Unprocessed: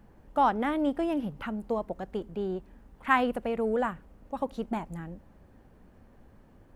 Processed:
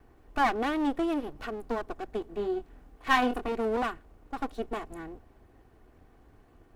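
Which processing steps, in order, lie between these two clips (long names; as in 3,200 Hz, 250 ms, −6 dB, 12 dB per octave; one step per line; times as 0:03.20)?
lower of the sound and its delayed copy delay 2.7 ms
0:02.25–0:03.52: double-tracking delay 24 ms −6.5 dB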